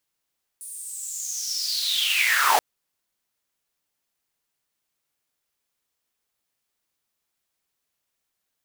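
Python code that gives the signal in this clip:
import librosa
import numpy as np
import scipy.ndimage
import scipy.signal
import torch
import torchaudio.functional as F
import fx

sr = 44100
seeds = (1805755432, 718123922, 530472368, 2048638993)

y = fx.riser_noise(sr, seeds[0], length_s=1.98, colour='pink', kind='highpass', start_hz=9600.0, end_hz=620.0, q=8.3, swell_db=18.5, law='linear')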